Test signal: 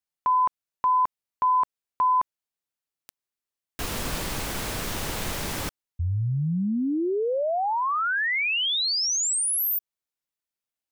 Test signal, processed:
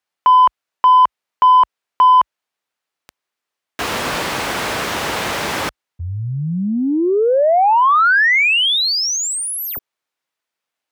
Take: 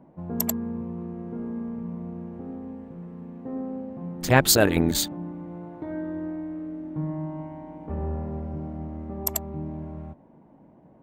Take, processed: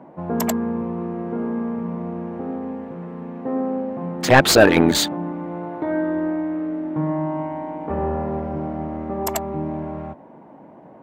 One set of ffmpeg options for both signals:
-filter_complex "[0:a]highpass=f=50:w=0.5412,highpass=f=50:w=1.3066,asplit=2[s0][s1];[s1]highpass=f=720:p=1,volume=8.91,asoftclip=type=tanh:threshold=0.708[s2];[s0][s2]amix=inputs=2:normalize=0,lowpass=f=2000:p=1,volume=0.501,volume=1.41"

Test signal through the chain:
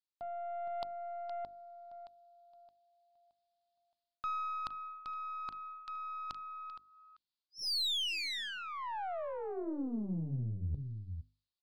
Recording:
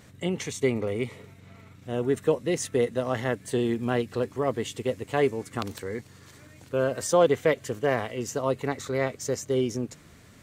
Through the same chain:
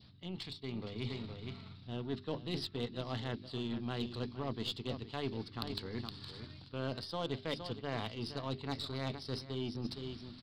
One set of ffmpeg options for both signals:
-af "equalizer=f=500:t=o:w=1:g=-12,equalizer=f=2000:t=o:w=1:g=-12,equalizer=f=4000:t=o:w=1:g=10,aecho=1:1:466:0.2,aresample=11025,aresample=44100,areverse,acompressor=threshold=0.0112:ratio=5,areverse,asoftclip=type=tanh:threshold=0.0355,adynamicequalizer=threshold=0.00178:dfrequency=1400:dqfactor=1.5:tfrequency=1400:tqfactor=1.5:attack=5:release=100:ratio=0.375:range=3:mode=cutabove:tftype=bell,dynaudnorm=f=210:g=7:m=1.68,aeval=exprs='0.0596*(cos(1*acos(clip(val(0)/0.0596,-1,1)))-cos(1*PI/2))+0.00376*(cos(3*acos(clip(val(0)/0.0596,-1,1)))-cos(3*PI/2))+0.00299*(cos(4*acos(clip(val(0)/0.0596,-1,1)))-cos(4*PI/2))+0.00188*(cos(7*acos(clip(val(0)/0.0596,-1,1)))-cos(7*PI/2))+0.000596*(cos(8*acos(clip(val(0)/0.0596,-1,1)))-cos(8*PI/2))':c=same,bandreject=f=50:t=h:w=6,bandreject=f=100:t=h:w=6,bandreject=f=150:t=h:w=6,bandreject=f=200:t=h:w=6,bandreject=f=250:t=h:w=6,bandreject=f=300:t=h:w=6,bandreject=f=350:t=h:w=6,bandreject=f=400:t=h:w=6,volume=1.19"

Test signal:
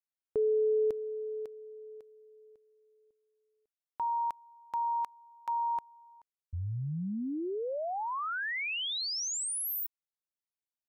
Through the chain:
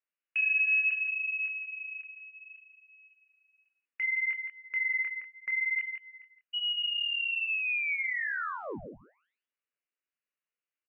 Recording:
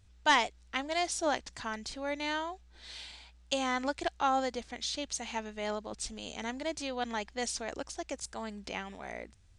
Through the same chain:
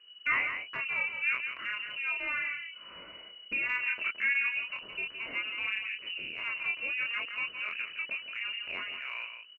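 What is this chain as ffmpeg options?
-filter_complex "[0:a]asplit=2[s0][s1];[s1]asoftclip=type=hard:threshold=0.0447,volume=0.316[s2];[s0][s2]amix=inputs=2:normalize=0,lowpass=f=2600:t=q:w=0.5098,lowpass=f=2600:t=q:w=0.6013,lowpass=f=2600:t=q:w=0.9,lowpass=f=2600:t=q:w=2.563,afreqshift=-3000,flanger=delay=22.5:depth=5.1:speed=0.67,lowshelf=f=180:g=-10,asplit=2[s3][s4];[s4]aecho=0:1:167:0.282[s5];[s3][s5]amix=inputs=2:normalize=0,acompressor=threshold=0.00631:ratio=1.5:attack=0.95:release=54:knee=6:detection=peak,equalizer=f=810:w=2.5:g=-14.5,volume=2.51" -ar 32000 -c:a libvorbis -b:a 96k

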